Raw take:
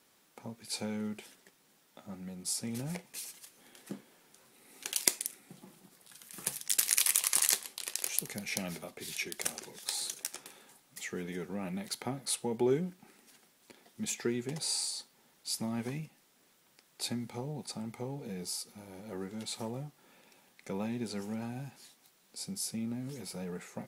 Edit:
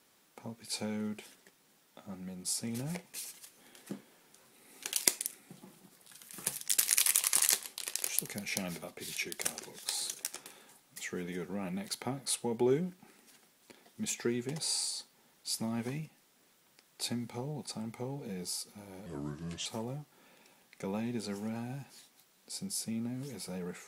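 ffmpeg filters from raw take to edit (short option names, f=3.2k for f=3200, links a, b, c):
-filter_complex "[0:a]asplit=3[a][b][c];[a]atrim=end=19.064[d];[b]atrim=start=19.06:end=19.52,asetpts=PTS-STARTPTS,asetrate=33957,aresample=44100,atrim=end_sample=26345,asetpts=PTS-STARTPTS[e];[c]atrim=start=19.516[f];[d][e]acrossfade=d=0.004:c1=hsin:c2=hsin[g];[g][f]acrossfade=d=0.004:c1=hsin:c2=hsin"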